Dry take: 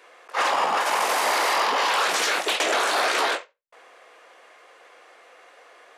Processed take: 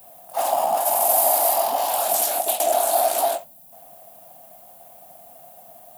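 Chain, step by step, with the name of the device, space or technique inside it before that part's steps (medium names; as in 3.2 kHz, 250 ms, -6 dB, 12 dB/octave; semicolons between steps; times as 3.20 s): turntable without a phono preamp (RIAA curve recording; white noise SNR 30 dB); FFT filter 100 Hz 0 dB, 150 Hz +10 dB, 260 Hz +6 dB, 460 Hz -11 dB, 680 Hz +13 dB, 1.1 kHz -12 dB, 2 kHz -20 dB, 2.9 kHz -14 dB, 6.1 kHz -13 dB, 13 kHz +7 dB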